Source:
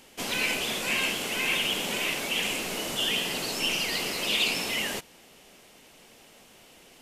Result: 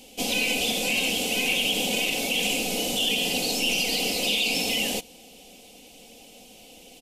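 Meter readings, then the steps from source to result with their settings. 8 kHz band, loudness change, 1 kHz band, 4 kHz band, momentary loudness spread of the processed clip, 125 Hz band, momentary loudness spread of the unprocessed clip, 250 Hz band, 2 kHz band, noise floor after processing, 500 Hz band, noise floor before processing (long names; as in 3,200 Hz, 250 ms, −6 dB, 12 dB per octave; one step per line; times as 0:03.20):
+5.0 dB, +3.5 dB, +1.5 dB, +3.5 dB, 3 LU, +3.0 dB, 5 LU, +6.0 dB, +2.0 dB, −50 dBFS, +4.5 dB, −55 dBFS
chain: flat-topped bell 1,400 Hz −15.5 dB 1.2 octaves
comb filter 4 ms, depth 57%
brickwall limiter −19.5 dBFS, peak gain reduction 6.5 dB
level +4.5 dB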